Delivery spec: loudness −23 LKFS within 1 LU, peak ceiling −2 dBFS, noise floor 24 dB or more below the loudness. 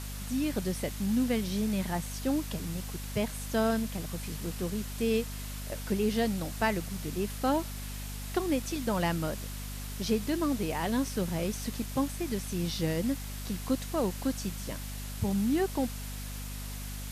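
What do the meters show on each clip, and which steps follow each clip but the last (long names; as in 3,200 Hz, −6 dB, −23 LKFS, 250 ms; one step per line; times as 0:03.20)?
mains hum 50 Hz; hum harmonics up to 250 Hz; level of the hum −37 dBFS; background noise floor −39 dBFS; target noise floor −57 dBFS; integrated loudness −32.5 LKFS; sample peak −15.5 dBFS; target loudness −23.0 LKFS
→ mains-hum notches 50/100/150/200/250 Hz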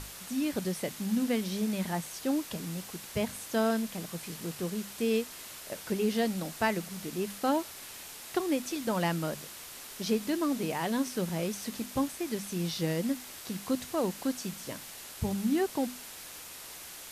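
mains hum none found; background noise floor −46 dBFS; target noise floor −57 dBFS
→ broadband denoise 11 dB, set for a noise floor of −46 dBFS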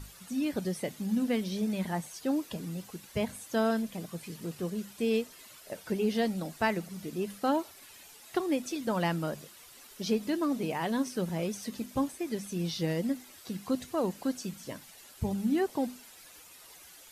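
background noise floor −53 dBFS; target noise floor −57 dBFS
→ broadband denoise 6 dB, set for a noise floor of −53 dBFS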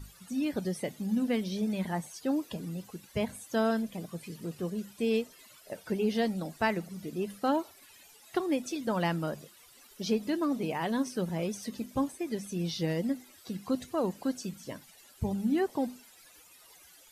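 background noise floor −57 dBFS; integrated loudness −33.0 LKFS; sample peak −15.5 dBFS; target loudness −23.0 LKFS
→ level +10 dB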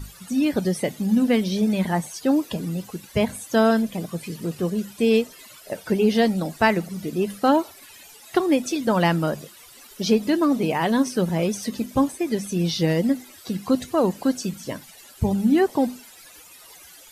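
integrated loudness −23.0 LKFS; sample peak −5.5 dBFS; background noise floor −47 dBFS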